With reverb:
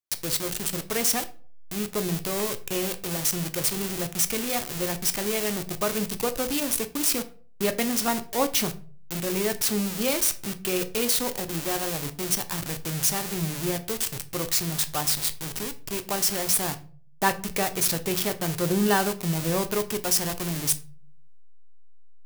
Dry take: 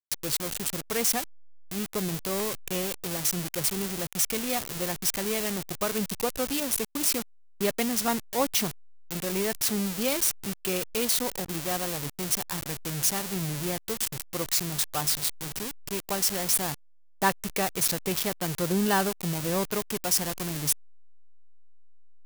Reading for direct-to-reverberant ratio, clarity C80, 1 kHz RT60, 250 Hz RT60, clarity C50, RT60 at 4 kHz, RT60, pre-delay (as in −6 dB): 9.0 dB, 21.0 dB, 0.40 s, 0.50 s, 16.5 dB, 0.30 s, 0.45 s, 3 ms